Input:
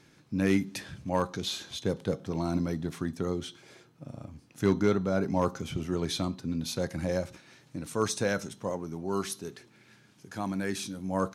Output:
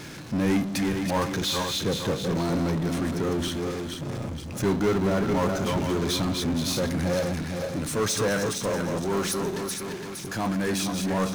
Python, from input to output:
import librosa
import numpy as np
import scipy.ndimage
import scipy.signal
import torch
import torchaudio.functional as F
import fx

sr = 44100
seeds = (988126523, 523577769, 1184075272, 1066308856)

y = fx.reverse_delay_fb(x, sr, ms=232, feedback_pct=50, wet_db=-6)
y = fx.power_curve(y, sr, exponent=0.5)
y = F.gain(torch.from_numpy(y), -2.5).numpy()